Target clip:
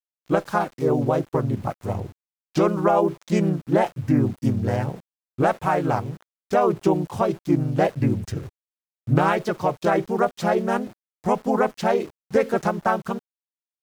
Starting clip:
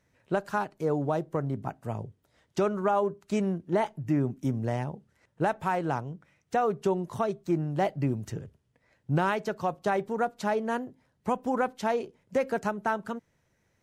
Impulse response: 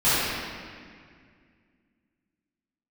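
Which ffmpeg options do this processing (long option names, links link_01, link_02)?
-filter_complex "[0:a]aeval=exprs='val(0)*gte(abs(val(0)),0.00398)':channel_layout=same,asplit=2[link_01][link_02];[link_02]asetrate=37084,aresample=44100,atempo=1.18921,volume=0dB[link_03];[link_01][link_03]amix=inputs=2:normalize=0,volume=4dB"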